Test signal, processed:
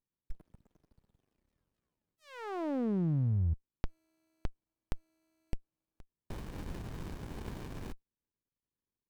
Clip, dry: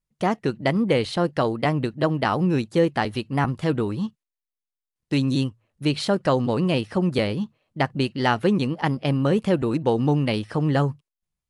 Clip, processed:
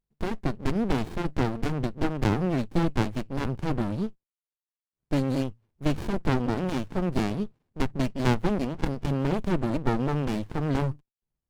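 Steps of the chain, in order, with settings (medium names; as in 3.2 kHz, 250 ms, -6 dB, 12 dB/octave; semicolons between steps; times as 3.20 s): sliding maximum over 65 samples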